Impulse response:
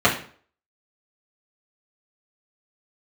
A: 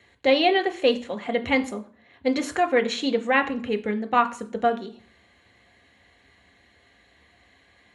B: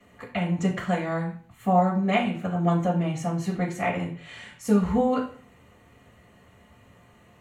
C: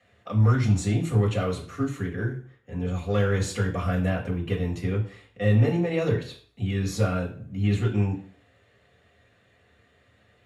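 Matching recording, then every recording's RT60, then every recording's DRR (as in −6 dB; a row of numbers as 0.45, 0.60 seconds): B; 0.45, 0.45, 0.45 seconds; 6.0, −8.0, −3.5 decibels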